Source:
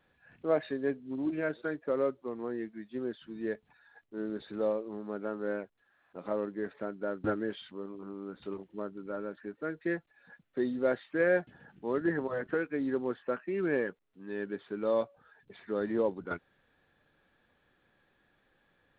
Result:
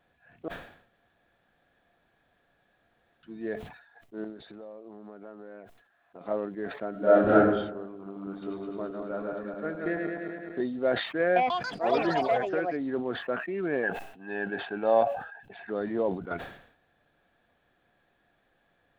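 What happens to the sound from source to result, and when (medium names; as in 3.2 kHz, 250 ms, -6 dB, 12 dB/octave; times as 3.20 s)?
0.48–3.23 s: room tone
4.24–6.21 s: compression 8:1, threshold -42 dBFS
6.91–7.37 s: reverb throw, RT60 0.93 s, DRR -12 dB
7.95–10.61 s: backward echo that repeats 106 ms, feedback 78%, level -3 dB
11.22–13.21 s: ever faster or slower copies 140 ms, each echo +6 st, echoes 3
13.83–15.70 s: small resonant body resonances 800/1600/2600 Hz, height 16 dB, ringing for 25 ms
whole clip: peaking EQ 690 Hz +11.5 dB 0.2 oct; decay stretcher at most 87 dB/s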